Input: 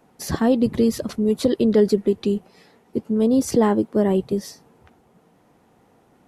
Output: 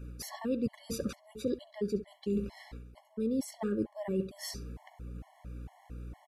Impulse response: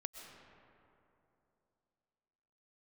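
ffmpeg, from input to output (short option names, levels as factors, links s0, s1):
-filter_complex "[0:a]aeval=exprs='val(0)+0.00631*(sin(2*PI*60*n/s)+sin(2*PI*2*60*n/s)/2+sin(2*PI*3*60*n/s)/3+sin(2*PI*4*60*n/s)/4+sin(2*PI*5*60*n/s)/5)':c=same,asplit=2[s0][s1];[s1]adelay=68,lowpass=f=3600:p=1,volume=0.168,asplit=2[s2][s3];[s3]adelay=68,lowpass=f=3600:p=1,volume=0.4,asplit=2[s4][s5];[s5]adelay=68,lowpass=f=3600:p=1,volume=0.4,asplit=2[s6][s7];[s7]adelay=68,lowpass=f=3600:p=1,volume=0.4[s8];[s0][s2][s4][s6][s8]amix=inputs=5:normalize=0,areverse,acompressor=threshold=0.0282:ratio=8,areverse,equalizer=f=2300:w=3:g=4.5,afftfilt=real='re*gt(sin(2*PI*2.2*pts/sr)*(1-2*mod(floor(b*sr/1024/570),2)),0)':imag='im*gt(sin(2*PI*2.2*pts/sr)*(1-2*mod(floor(b*sr/1024/570),2)),0)':win_size=1024:overlap=0.75,volume=1.26"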